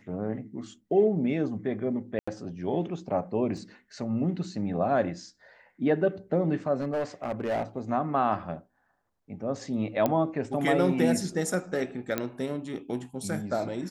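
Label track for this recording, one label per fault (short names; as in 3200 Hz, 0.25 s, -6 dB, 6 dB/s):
2.190000	2.270000	gap 85 ms
3.570000	3.570000	gap 3 ms
6.760000	7.630000	clipped -24.5 dBFS
10.060000	10.060000	pop -12 dBFS
12.180000	12.180000	pop -13 dBFS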